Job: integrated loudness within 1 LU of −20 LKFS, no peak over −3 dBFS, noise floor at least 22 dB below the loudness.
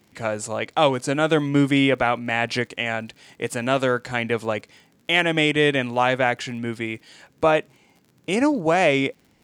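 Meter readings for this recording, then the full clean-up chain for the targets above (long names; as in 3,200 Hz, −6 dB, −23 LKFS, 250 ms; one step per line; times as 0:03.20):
crackle rate 55 per second; integrated loudness −22.0 LKFS; sample peak −3.5 dBFS; target loudness −20.0 LKFS
→ click removal
level +2 dB
brickwall limiter −3 dBFS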